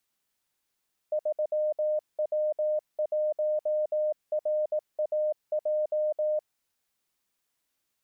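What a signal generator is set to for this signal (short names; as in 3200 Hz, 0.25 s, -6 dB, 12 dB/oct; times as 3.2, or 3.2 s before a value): Morse "3W1RAJ" 18 wpm 610 Hz -24 dBFS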